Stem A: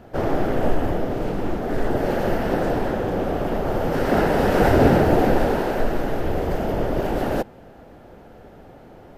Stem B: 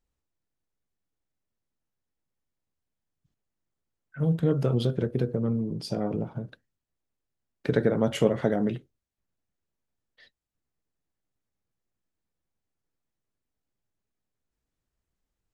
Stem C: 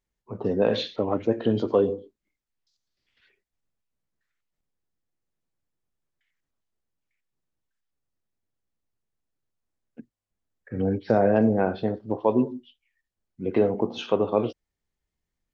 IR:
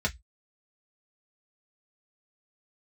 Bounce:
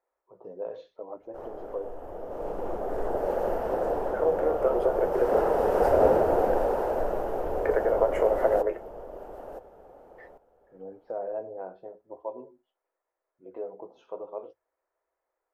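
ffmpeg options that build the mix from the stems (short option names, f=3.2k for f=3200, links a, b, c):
-filter_complex "[0:a]adelay=1200,volume=-10.5dB,asplit=2[a][b];[b]volume=-12.5dB[c];[1:a]highpass=f=370:w=0.5412,highpass=f=370:w=1.3066,highshelf=f=2.8k:t=q:w=3:g=-9.5,acompressor=threshold=-30dB:ratio=6,volume=2.5dB,asplit=2[d][e];[e]volume=-14.5dB[f];[2:a]flanger=delay=2.7:depth=5:regen=-56:speed=0.82:shape=triangular,volume=-17.5dB,asplit=3[g][h][i];[h]volume=-15dB[j];[i]apad=whole_len=457532[k];[a][k]sidechaincompress=threshold=-51dB:ratio=8:attack=9.5:release=781[l];[3:a]atrim=start_sample=2205[m];[f][j]amix=inputs=2:normalize=0[n];[n][m]afir=irnorm=-1:irlink=0[o];[c]aecho=0:1:968:1[p];[l][d][g][o][p]amix=inputs=5:normalize=0,equalizer=f=125:t=o:w=1:g=-10,equalizer=f=250:t=o:w=1:g=-6,equalizer=f=500:t=o:w=1:g=9,equalizer=f=1k:t=o:w=1:g=6,equalizer=f=2k:t=o:w=1:g=-6,equalizer=f=4k:t=o:w=1:g=-8"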